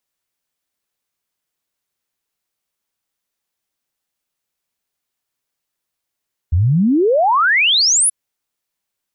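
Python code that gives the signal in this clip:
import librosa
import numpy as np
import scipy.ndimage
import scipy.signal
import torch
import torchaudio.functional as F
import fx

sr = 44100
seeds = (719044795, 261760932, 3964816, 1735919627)

y = fx.ess(sr, length_s=1.58, from_hz=77.0, to_hz=11000.0, level_db=-10.5)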